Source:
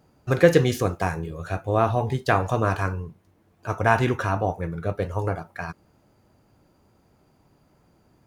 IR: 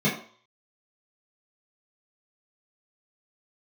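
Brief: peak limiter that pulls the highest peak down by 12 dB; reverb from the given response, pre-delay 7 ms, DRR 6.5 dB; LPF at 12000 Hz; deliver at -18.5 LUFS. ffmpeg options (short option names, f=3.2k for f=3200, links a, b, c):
-filter_complex "[0:a]lowpass=12k,alimiter=limit=-15dB:level=0:latency=1,asplit=2[a][b];[1:a]atrim=start_sample=2205,adelay=7[c];[b][c]afir=irnorm=-1:irlink=0,volume=-20.5dB[d];[a][d]amix=inputs=2:normalize=0,volume=7dB"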